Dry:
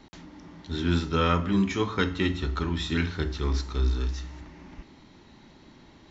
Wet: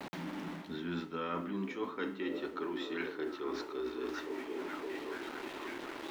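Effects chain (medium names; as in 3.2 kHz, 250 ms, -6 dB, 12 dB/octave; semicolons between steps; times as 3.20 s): high-pass sweep 160 Hz -> 340 Hz, 0.02–2.70 s; dynamic bell 280 Hz, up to -4 dB, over -33 dBFS, Q 1.8; on a send: repeats whose band climbs or falls 540 ms, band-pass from 290 Hz, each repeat 0.7 oct, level -8.5 dB; on the sum: bit crusher 8-bit; tone controls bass -9 dB, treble -15 dB; reverse; compression 5:1, threshold -46 dBFS, peak gain reduction 22 dB; reverse; trim +8.5 dB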